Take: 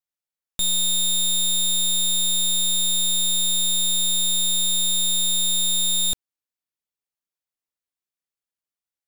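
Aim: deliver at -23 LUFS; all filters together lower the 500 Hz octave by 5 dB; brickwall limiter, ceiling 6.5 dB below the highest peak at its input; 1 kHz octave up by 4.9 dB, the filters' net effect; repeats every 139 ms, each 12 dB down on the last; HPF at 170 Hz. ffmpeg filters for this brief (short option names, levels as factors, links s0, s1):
-af "highpass=170,equalizer=f=500:t=o:g=-7.5,equalizer=f=1000:t=o:g=8,alimiter=limit=0.0841:level=0:latency=1,aecho=1:1:139|278|417:0.251|0.0628|0.0157,volume=1.33"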